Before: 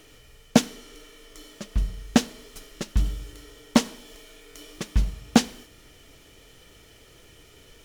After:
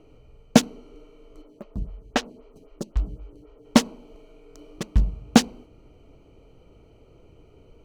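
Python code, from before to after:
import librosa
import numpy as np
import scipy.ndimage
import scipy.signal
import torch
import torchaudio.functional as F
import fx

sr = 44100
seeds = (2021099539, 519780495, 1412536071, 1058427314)

y = fx.wiener(x, sr, points=25)
y = fx.stagger_phaser(y, sr, hz=3.8, at=(1.41, 3.64), fade=0.02)
y = y * librosa.db_to_amplitude(2.5)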